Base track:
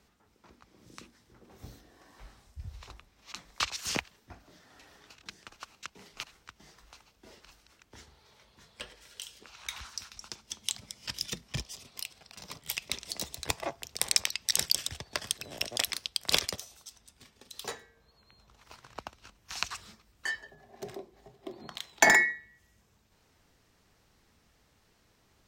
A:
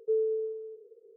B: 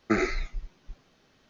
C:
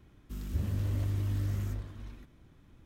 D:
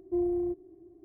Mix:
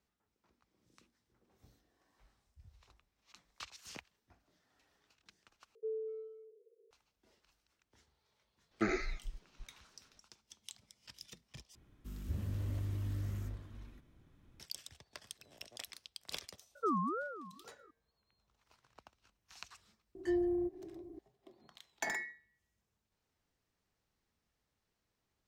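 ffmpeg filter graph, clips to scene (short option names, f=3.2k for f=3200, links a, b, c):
-filter_complex "[1:a]asplit=2[a][b];[0:a]volume=-17.5dB[c];[a]asplit=2[d][e];[e]adelay=240,highpass=300,lowpass=3.4k,asoftclip=type=hard:threshold=-31.5dB,volume=-25dB[f];[d][f]amix=inputs=2:normalize=0[g];[b]aeval=exprs='val(0)*sin(2*PI*820*n/s+820*0.25/2*sin(2*PI*2*n/s))':c=same[h];[4:a]acompressor=mode=upward:threshold=-37dB:ratio=2.5:attack=3.2:release=140:knee=2.83:detection=peak[i];[c]asplit=3[j][k][l];[j]atrim=end=5.754[m];[g]atrim=end=1.16,asetpts=PTS-STARTPTS,volume=-12dB[n];[k]atrim=start=6.906:end=11.754[o];[3:a]atrim=end=2.85,asetpts=PTS-STARTPTS,volume=-6.5dB[p];[l]atrim=start=14.596[q];[2:a]atrim=end=1.49,asetpts=PTS-STARTPTS,volume=-8.5dB,afade=t=in:d=0.004:c=hsin,afade=t=out:st=1.486:d=0.004:c=hsin,adelay=8710[r];[h]atrim=end=1.16,asetpts=PTS-STARTPTS,volume=-3dB,afade=t=in:d=0.004:c=hsin,afade=t=out:st=1.156:d=0.004:c=hsin,adelay=16750[s];[i]atrim=end=1.04,asetpts=PTS-STARTPTS,volume=-4dB,afade=t=in:d=0.004:c=hsin,afade=t=out:st=1.036:d=0.004:c=hsin,adelay=20150[t];[m][n]acrossfade=d=0.004:c1=hsin:c2=hsin[u];[u][o]acrossfade=d=0.004:c1=hsin:c2=hsin[v];[v][p]acrossfade=d=0.004:c1=hsin:c2=hsin[w];[w][q]acrossfade=d=0.004:c1=hsin:c2=hsin[x];[x][r][s][t]amix=inputs=4:normalize=0"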